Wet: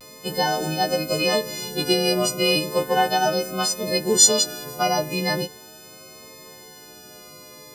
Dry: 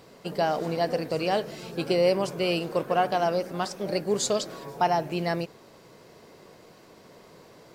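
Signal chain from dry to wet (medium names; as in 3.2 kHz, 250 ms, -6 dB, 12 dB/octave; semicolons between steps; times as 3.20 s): partials quantised in pitch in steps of 3 st; vibrato 0.37 Hz 25 cents; Shepard-style phaser falling 0.8 Hz; trim +5.5 dB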